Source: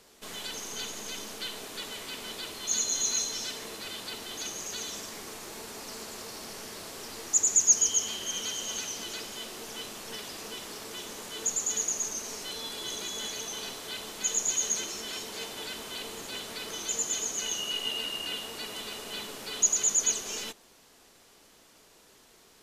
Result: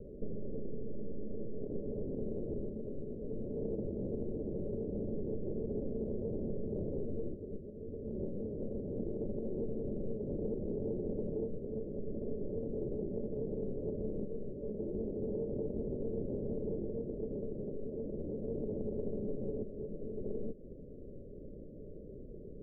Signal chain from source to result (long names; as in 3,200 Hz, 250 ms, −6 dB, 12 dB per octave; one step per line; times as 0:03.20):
spectral tilt −3 dB per octave
downward compressor 16 to 1, threshold −41 dBFS, peak gain reduction 18 dB
Chebyshev low-pass with heavy ripple 590 Hz, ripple 3 dB
highs frequency-modulated by the lows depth 0.12 ms
level +11.5 dB